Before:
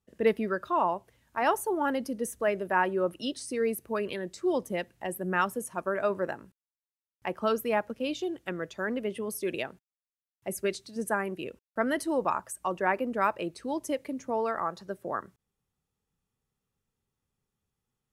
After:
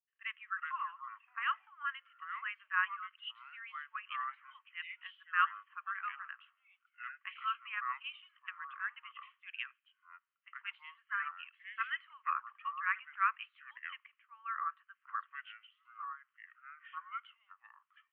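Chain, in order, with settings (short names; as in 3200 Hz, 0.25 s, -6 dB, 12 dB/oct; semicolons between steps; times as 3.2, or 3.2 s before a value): echoes that change speed 0.273 s, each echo -6 st, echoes 2; Chebyshev band-pass 1100–3100 Hz, order 5; three-band expander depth 40%; gain -3.5 dB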